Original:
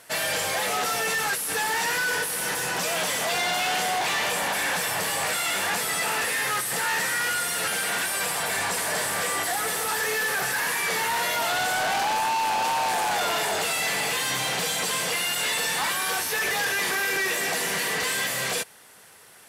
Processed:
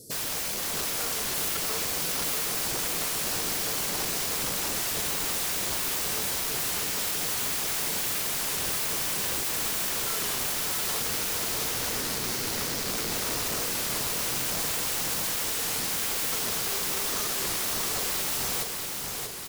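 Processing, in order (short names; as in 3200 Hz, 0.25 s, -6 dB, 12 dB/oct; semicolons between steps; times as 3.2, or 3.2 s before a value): elliptic band-stop 450–4800 Hz, stop band 40 dB; low shelf 450 Hz +9 dB; limiter -24 dBFS, peak gain reduction 7.5 dB; wrapped overs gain 30.5 dB; feedback echo 0.641 s, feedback 59%, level -4.5 dB; record warp 33 1/3 rpm, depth 100 cents; gain +4.5 dB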